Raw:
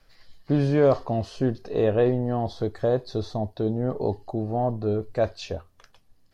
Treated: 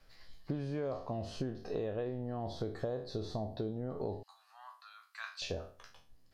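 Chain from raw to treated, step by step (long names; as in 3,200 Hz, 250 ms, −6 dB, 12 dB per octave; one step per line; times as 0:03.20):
peak hold with a decay on every bin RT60 0.37 s
0:04.23–0:05.42: Butterworth high-pass 1,100 Hz 48 dB per octave
downward compressor 12 to 1, threshold −29 dBFS, peak gain reduction 15.5 dB
level −4.5 dB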